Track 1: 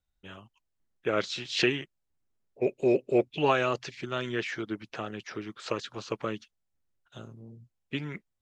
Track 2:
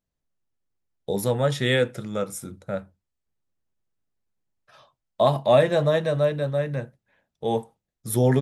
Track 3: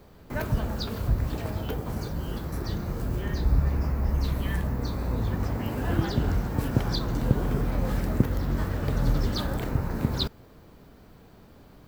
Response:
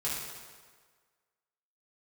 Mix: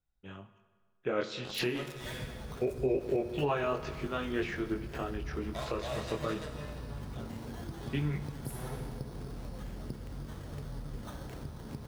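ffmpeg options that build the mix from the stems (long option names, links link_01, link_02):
-filter_complex "[0:a]highshelf=frequency=2100:gain=-9,flanger=delay=20:depth=4.7:speed=0.24,volume=2dB,asplit=3[link_01][link_02][link_03];[link_02]volume=-15dB[link_04];[1:a]highshelf=frequency=2000:gain=9.5,acrusher=bits=2:mix=0:aa=0.5,adelay=350,volume=-19.5dB,asplit=2[link_05][link_06];[link_06]volume=-10dB[link_07];[2:a]acrusher=samples=9:mix=1:aa=0.000001,adelay=1700,volume=-12dB,asplit=2[link_08][link_09];[link_09]volume=-17dB[link_10];[link_03]apad=whole_len=386349[link_11];[link_05][link_11]sidechaingate=range=-33dB:threshold=-51dB:ratio=16:detection=peak[link_12];[link_12][link_08]amix=inputs=2:normalize=0,acompressor=threshold=-40dB:ratio=6,volume=0dB[link_13];[3:a]atrim=start_sample=2205[link_14];[link_04][link_07][link_10]amix=inputs=3:normalize=0[link_15];[link_15][link_14]afir=irnorm=-1:irlink=0[link_16];[link_01][link_13][link_16]amix=inputs=3:normalize=0,alimiter=limit=-21dB:level=0:latency=1:release=183"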